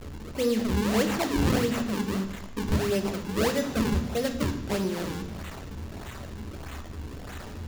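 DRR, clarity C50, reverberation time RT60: 5.0 dB, 9.5 dB, 1.0 s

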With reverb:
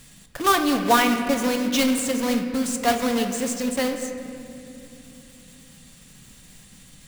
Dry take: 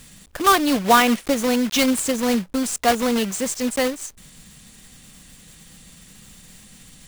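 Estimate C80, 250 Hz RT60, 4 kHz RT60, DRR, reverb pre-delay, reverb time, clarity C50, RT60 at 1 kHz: 8.0 dB, 4.0 s, 1.8 s, 5.0 dB, 7 ms, 2.9 s, 7.0 dB, 2.4 s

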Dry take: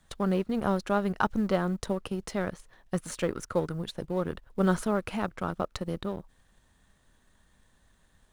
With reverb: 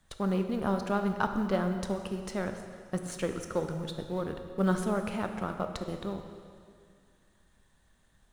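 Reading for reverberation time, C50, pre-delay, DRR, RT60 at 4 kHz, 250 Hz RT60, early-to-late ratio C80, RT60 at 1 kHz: 2.2 s, 7.0 dB, 7 ms, 6.0 dB, 2.1 s, 2.3 s, 8.0 dB, 2.2 s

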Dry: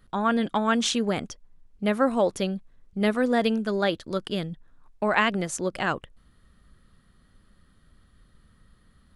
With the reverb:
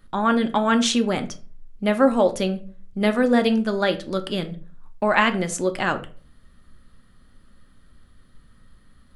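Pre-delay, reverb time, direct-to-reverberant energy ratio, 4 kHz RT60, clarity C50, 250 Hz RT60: 3 ms, 0.40 s, 7.0 dB, 0.25 s, 15.0 dB, 0.50 s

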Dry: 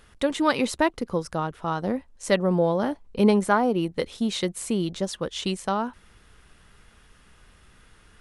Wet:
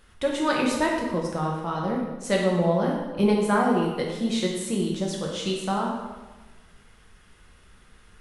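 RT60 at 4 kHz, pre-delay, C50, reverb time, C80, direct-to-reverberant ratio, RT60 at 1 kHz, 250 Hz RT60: 1.0 s, 5 ms, 2.0 dB, 1.2 s, 4.5 dB, -2.0 dB, 1.2 s, 1.3 s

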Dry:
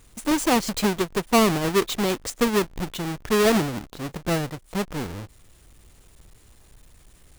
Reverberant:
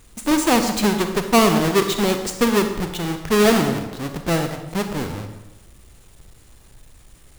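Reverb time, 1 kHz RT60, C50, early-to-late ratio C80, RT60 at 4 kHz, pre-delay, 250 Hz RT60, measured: 1.0 s, 1.0 s, 7.5 dB, 9.5 dB, 0.75 s, 36 ms, 1.1 s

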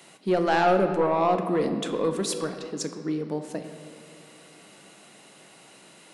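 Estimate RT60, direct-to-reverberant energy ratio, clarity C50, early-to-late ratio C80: 2.2 s, 6.0 dB, 8.0 dB, 9.0 dB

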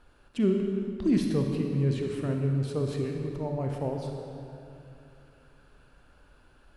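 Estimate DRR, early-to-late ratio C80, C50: 2.0 dB, 3.5 dB, 2.5 dB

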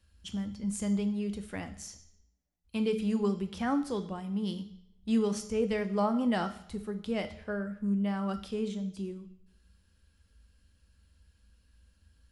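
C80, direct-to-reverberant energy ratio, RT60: 16.0 dB, 8.5 dB, 0.75 s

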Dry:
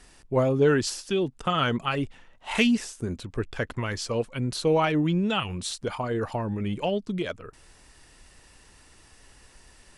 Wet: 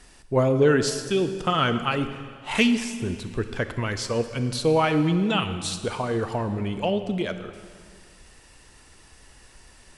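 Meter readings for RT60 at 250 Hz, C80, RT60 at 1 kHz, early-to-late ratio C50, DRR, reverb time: 2.0 s, 11.0 dB, 2.0 s, 10.0 dB, 9.0 dB, 2.0 s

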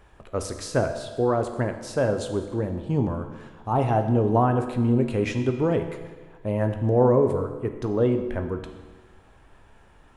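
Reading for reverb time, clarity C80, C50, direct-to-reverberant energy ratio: 1.4 s, 10.0 dB, 8.5 dB, 6.0 dB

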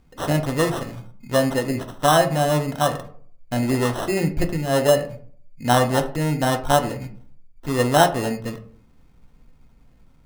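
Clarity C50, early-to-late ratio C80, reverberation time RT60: 12.5 dB, 17.0 dB, 0.55 s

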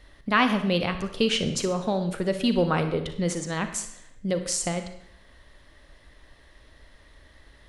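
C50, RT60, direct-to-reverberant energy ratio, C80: 9.5 dB, 0.70 s, 8.0 dB, 12.0 dB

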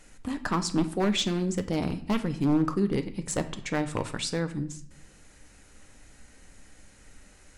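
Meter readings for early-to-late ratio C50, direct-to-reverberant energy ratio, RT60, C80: 13.5 dB, 8.0 dB, 0.60 s, 17.0 dB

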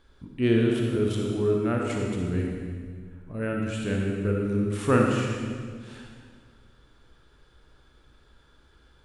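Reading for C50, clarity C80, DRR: 0.5 dB, 2.0 dB, -0.5 dB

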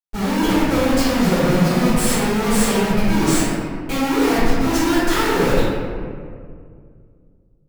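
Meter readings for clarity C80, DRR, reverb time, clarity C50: -1.0 dB, -17.0 dB, 2.1 s, -3.5 dB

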